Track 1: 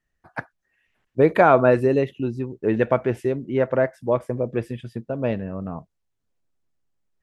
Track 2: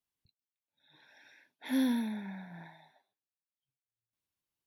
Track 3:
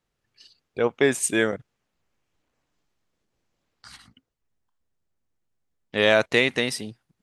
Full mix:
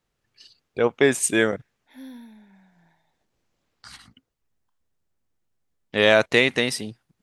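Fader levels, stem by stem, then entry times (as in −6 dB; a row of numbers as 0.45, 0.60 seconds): muted, −12.0 dB, +2.0 dB; muted, 0.25 s, 0.00 s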